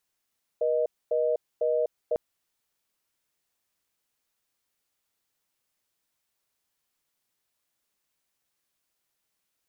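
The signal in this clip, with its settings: call progress tone reorder tone, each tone -25 dBFS 1.55 s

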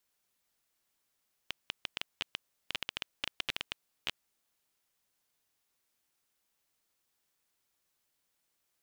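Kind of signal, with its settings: random clicks 10/s -15.5 dBFS 3.04 s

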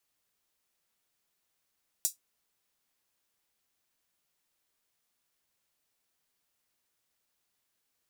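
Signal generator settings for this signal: closed hi-hat, high-pass 6500 Hz, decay 0.14 s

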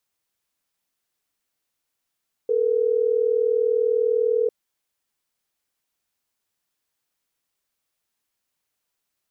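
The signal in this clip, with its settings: call progress tone ringback tone, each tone -20.5 dBFS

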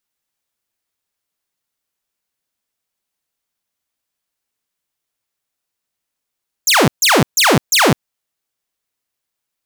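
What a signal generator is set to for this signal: burst of laser zaps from 7600 Hz, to 110 Hz, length 0.21 s saw, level -6 dB, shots 4, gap 0.14 s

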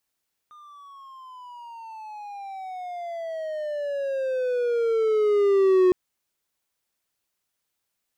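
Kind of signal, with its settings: gliding synth tone triangle, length 5.41 s, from 1220 Hz, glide -21 st, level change +31 dB, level -12 dB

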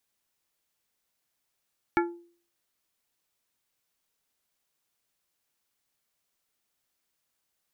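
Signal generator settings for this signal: glass hit plate, lowest mode 344 Hz, decay 0.47 s, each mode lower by 2 dB, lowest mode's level -20 dB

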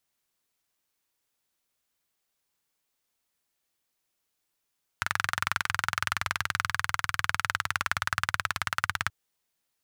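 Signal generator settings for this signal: single-cylinder engine model, changing speed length 4.08 s, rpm 2700, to 2100, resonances 96/1400 Hz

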